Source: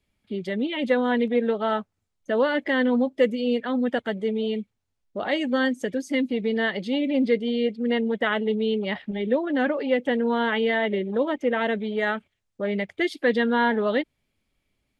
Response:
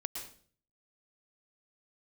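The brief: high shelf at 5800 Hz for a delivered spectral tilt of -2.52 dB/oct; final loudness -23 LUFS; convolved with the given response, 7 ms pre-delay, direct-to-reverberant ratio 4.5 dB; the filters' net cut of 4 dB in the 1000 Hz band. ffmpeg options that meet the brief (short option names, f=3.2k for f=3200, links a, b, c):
-filter_complex "[0:a]equalizer=f=1k:t=o:g=-5.5,highshelf=f=5.8k:g=6,asplit=2[a][b];[1:a]atrim=start_sample=2205,adelay=7[c];[b][c]afir=irnorm=-1:irlink=0,volume=-4.5dB[d];[a][d]amix=inputs=2:normalize=0,volume=1.5dB"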